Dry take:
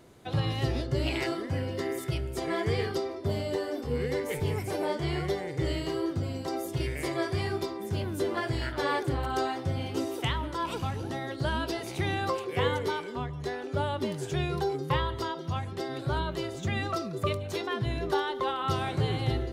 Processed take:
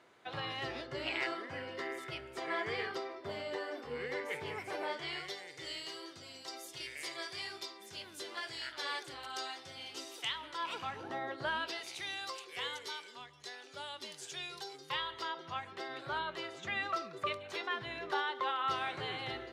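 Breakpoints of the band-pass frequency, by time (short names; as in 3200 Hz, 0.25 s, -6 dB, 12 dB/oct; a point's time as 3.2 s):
band-pass, Q 0.81
4.77 s 1700 Hz
5.39 s 4600 Hz
10.27 s 4600 Hz
11.26 s 1000 Hz
12.02 s 5300 Hz
14.72 s 5300 Hz
15.41 s 1900 Hz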